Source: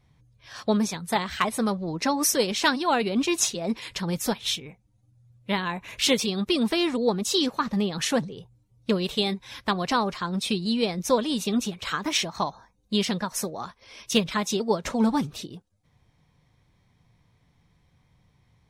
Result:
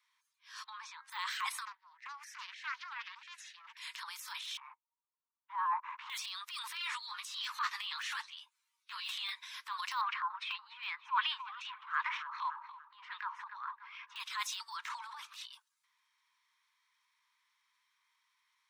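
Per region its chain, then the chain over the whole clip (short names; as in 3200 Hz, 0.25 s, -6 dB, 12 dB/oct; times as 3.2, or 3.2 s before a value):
0.64–1.1 tape spacing loss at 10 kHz 31 dB + de-hum 269.5 Hz, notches 8
1.65–3.77 double band-pass 1100 Hz, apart 1.4 oct + Doppler distortion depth 0.49 ms
4.57–6.1 sample leveller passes 3 + Butterworth band-pass 810 Hz, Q 1.7
6.75–9.45 bell 2300 Hz +7 dB 2.1 oct + ensemble effect
10.01–14.16 high shelf 3300 Hz -7.5 dB + LFO low-pass sine 2.6 Hz 760–2800 Hz + darkening echo 0.288 s, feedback 36%, low-pass 4700 Hz, level -18.5 dB
14.77–15.53 tone controls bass -15 dB, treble -9 dB + negative-ratio compressor -32 dBFS
whole clip: de-esser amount 95%; steep high-pass 940 Hz 96 dB/oct; transient shaper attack -9 dB, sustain +7 dB; gain -3.5 dB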